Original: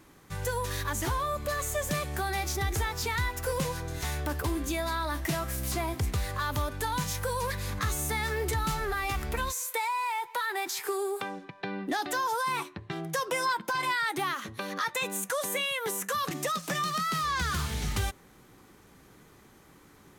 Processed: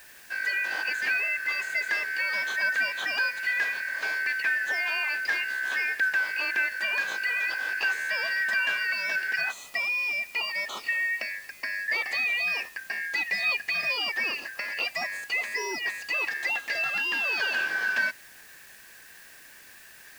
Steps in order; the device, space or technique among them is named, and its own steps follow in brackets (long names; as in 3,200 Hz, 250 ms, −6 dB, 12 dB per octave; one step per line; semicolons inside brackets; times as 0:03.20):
split-band scrambled radio (band-splitting scrambler in four parts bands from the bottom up 3142; band-pass filter 330–3,100 Hz; white noise bed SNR 23 dB)
level +4 dB